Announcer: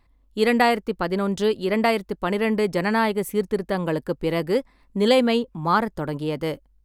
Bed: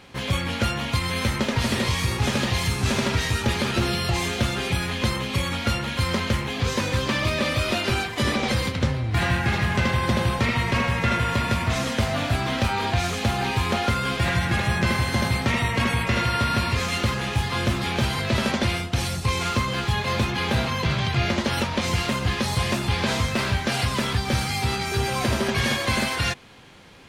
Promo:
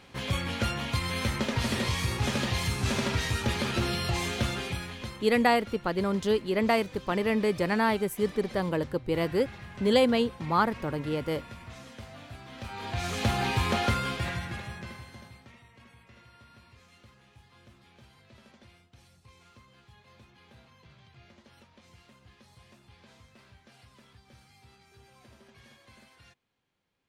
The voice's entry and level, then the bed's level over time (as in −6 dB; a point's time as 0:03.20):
4.85 s, −4.5 dB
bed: 0:04.51 −5.5 dB
0:05.41 −21.5 dB
0:12.47 −21.5 dB
0:13.22 −3.5 dB
0:13.91 −3.5 dB
0:15.64 −33 dB